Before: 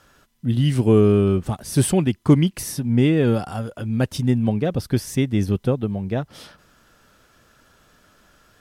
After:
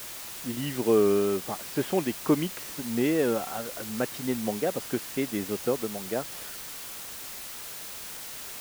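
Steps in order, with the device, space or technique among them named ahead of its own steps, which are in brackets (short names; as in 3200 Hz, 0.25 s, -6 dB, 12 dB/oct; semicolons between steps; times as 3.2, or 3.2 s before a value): wax cylinder (BPF 350–2400 Hz; wow and flutter; white noise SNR 10 dB); gain -2.5 dB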